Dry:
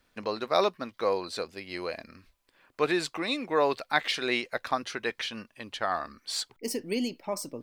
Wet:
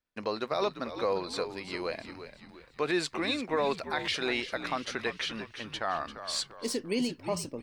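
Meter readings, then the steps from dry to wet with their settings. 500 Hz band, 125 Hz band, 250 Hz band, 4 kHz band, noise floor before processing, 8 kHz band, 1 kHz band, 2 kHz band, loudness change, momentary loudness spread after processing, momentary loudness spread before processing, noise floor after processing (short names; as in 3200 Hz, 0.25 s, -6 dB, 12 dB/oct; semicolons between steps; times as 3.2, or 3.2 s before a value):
-2.5 dB, +1.5 dB, -0.5 dB, -1.0 dB, -70 dBFS, -0.5 dB, -3.5 dB, -2.5 dB, -2.0 dB, 9 LU, 10 LU, -56 dBFS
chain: gate with hold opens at -55 dBFS; bell 14000 Hz -14 dB 0.3 oct; limiter -19 dBFS, peak gain reduction 10 dB; frequency-shifting echo 0.344 s, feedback 45%, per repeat -72 Hz, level -11 dB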